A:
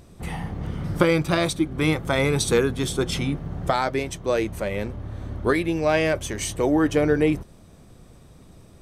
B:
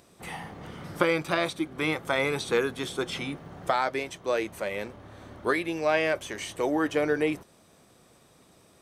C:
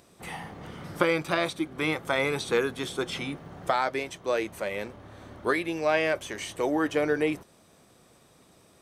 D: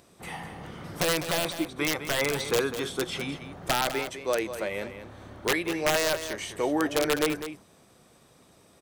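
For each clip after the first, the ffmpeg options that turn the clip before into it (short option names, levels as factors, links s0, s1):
-filter_complex "[0:a]acrossover=split=3500[s0][s1];[s1]acompressor=threshold=0.01:ratio=4:attack=1:release=60[s2];[s0][s2]amix=inputs=2:normalize=0,highpass=f=580:p=1,volume=0.891"
-af anull
-af "aeval=exprs='(mod(6.31*val(0)+1,2)-1)/6.31':c=same,aecho=1:1:202:0.299"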